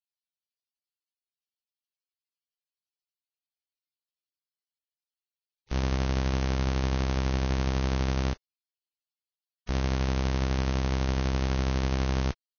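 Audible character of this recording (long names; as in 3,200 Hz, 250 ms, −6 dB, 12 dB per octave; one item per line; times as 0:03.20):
tremolo saw down 12 Hz, depth 40%
Ogg Vorbis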